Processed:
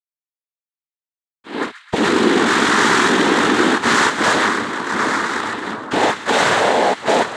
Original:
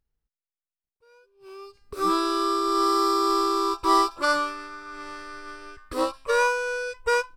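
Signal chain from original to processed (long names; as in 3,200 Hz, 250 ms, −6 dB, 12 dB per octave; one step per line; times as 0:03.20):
hearing-aid frequency compression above 1,200 Hz 4 to 1
rotating-speaker cabinet horn 7 Hz, later 0.85 Hz, at 0:00.86
fuzz pedal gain 39 dB, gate −47 dBFS
cochlear-implant simulation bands 6
on a send: echo with a time of its own for lows and highs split 1,400 Hz, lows 749 ms, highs 130 ms, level −12 dB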